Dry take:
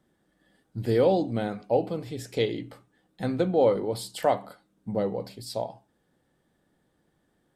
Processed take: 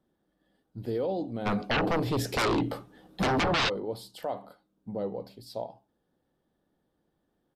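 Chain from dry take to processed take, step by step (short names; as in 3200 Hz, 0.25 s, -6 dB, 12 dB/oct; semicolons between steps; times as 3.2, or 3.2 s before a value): graphic EQ 125/2000/8000 Hz -4/-7/-10 dB; limiter -18.5 dBFS, peak gain reduction 7.5 dB; 1.45–3.68 sine folder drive 12 dB -> 16 dB, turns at -18.5 dBFS; downsampling 32000 Hz; gain -4 dB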